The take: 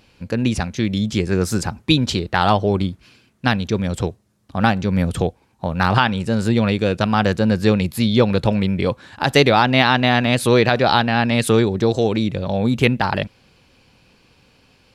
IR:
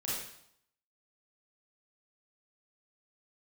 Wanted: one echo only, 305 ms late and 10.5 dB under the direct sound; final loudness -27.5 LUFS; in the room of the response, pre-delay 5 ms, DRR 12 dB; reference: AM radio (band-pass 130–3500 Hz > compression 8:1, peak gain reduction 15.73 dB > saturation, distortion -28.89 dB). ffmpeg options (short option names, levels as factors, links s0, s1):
-filter_complex "[0:a]aecho=1:1:305:0.299,asplit=2[s0][s1];[1:a]atrim=start_sample=2205,adelay=5[s2];[s1][s2]afir=irnorm=-1:irlink=0,volume=0.168[s3];[s0][s3]amix=inputs=2:normalize=0,highpass=130,lowpass=3500,acompressor=threshold=0.0631:ratio=8,asoftclip=threshold=0.299,volume=1.26"